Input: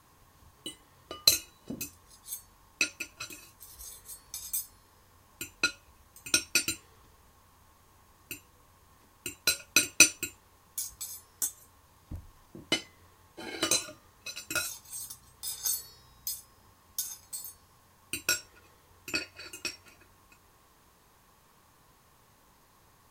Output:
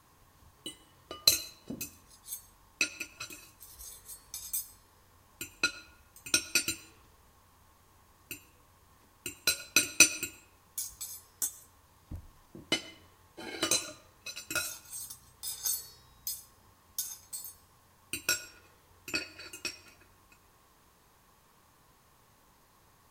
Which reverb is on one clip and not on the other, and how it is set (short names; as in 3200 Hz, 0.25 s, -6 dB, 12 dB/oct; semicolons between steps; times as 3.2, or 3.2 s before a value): digital reverb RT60 0.72 s, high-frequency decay 0.75×, pre-delay 65 ms, DRR 18 dB; gain -1.5 dB